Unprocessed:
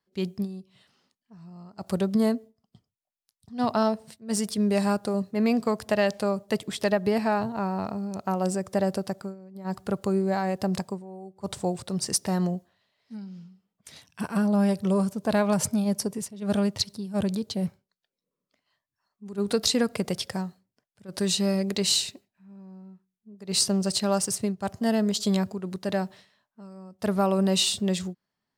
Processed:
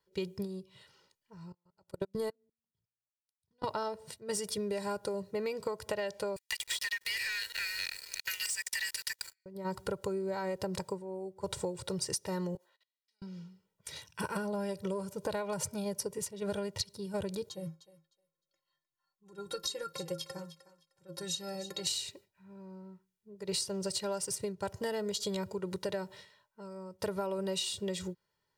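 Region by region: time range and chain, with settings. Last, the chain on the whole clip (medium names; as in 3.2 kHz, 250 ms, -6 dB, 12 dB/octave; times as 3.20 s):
1.52–3.64 s: de-hum 57.26 Hz, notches 4 + level held to a coarse grid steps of 23 dB + upward expansion 2.5:1, over -35 dBFS
6.36–9.46 s: steep high-pass 1.7 kHz 96 dB/octave + compression 4:1, threshold -44 dBFS + waveshaping leveller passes 5
12.55–13.22 s: high-pass 590 Hz + level held to a coarse grid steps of 24 dB + three bands expanded up and down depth 100%
17.49–21.87 s: inharmonic resonator 160 Hz, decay 0.22 s, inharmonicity 0.03 + thinning echo 306 ms, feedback 17%, high-pass 500 Hz, level -15 dB
whole clip: comb 2.1 ms, depth 84%; compression 10:1, threshold -32 dBFS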